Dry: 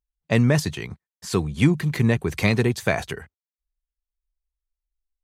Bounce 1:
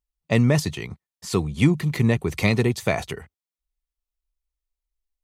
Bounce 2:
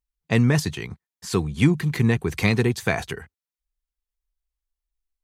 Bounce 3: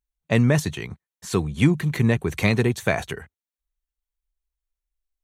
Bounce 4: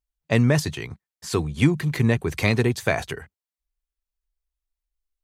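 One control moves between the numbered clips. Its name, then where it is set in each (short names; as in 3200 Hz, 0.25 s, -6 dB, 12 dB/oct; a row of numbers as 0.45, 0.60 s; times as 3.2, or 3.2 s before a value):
notch, frequency: 1600, 590, 4900, 190 Hz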